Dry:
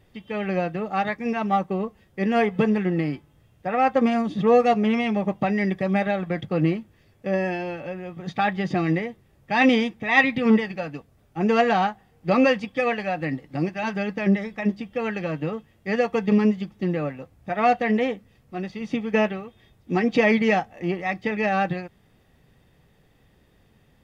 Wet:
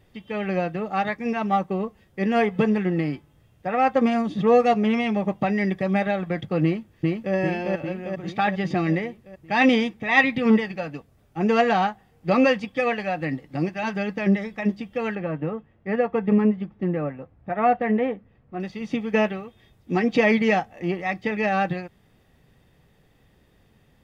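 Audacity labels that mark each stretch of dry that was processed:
6.630000	7.350000	echo throw 0.4 s, feedback 60%, level -1.5 dB
15.150000	18.600000	LPF 1800 Hz

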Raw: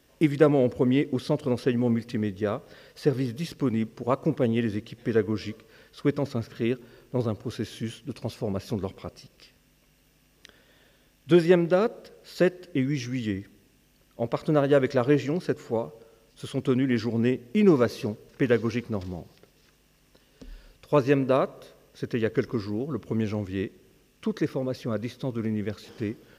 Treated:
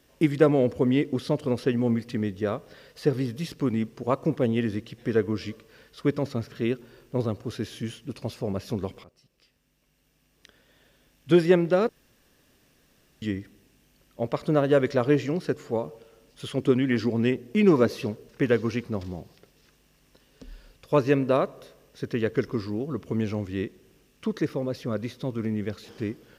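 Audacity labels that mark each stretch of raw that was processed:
9.040000	11.330000	fade in, from -17 dB
11.890000	13.220000	room tone
15.850000	18.280000	LFO bell 2.5 Hz 260–3400 Hz +6 dB

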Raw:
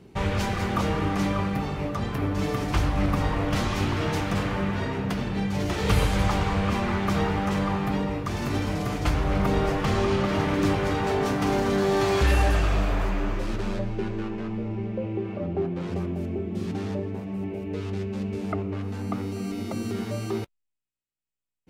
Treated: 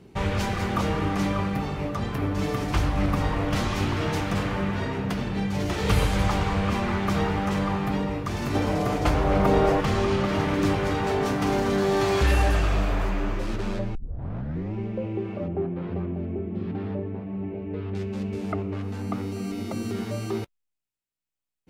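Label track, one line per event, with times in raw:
8.550000	9.810000	bell 590 Hz +7 dB 2 oct
13.950000	13.950000	tape start 0.79 s
15.480000	17.950000	air absorption 420 m

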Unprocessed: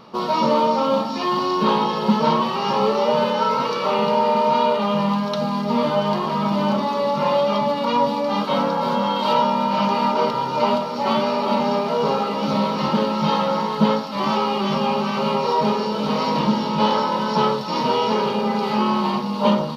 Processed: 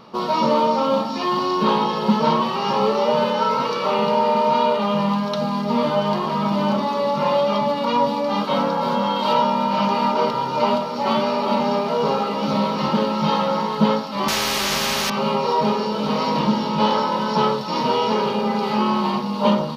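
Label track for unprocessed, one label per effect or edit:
14.280000	15.100000	spectral compressor 4:1

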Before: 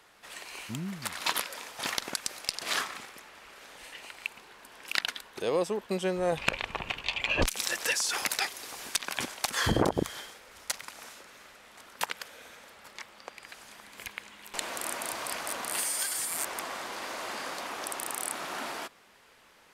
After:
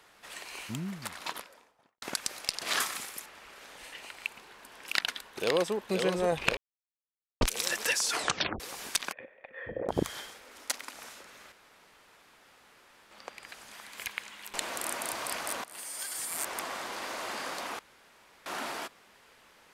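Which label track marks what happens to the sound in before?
0.680000	2.020000	studio fade out
2.800000	3.260000	bell 12000 Hz +14.5 dB 1.7 oct
4.850000	5.740000	echo throw 0.52 s, feedback 60%, level -5 dB
6.570000	7.410000	mute
8.110000	8.110000	tape stop 0.49 s
9.120000	9.890000	vocal tract filter e
10.440000	10.950000	resonant low shelf 200 Hz -8 dB, Q 3
11.520000	13.110000	room tone
13.730000	14.490000	tilt shelf lows -4 dB, about 630 Hz
15.640000	16.580000	fade in linear, from -19.5 dB
17.790000	18.460000	room tone

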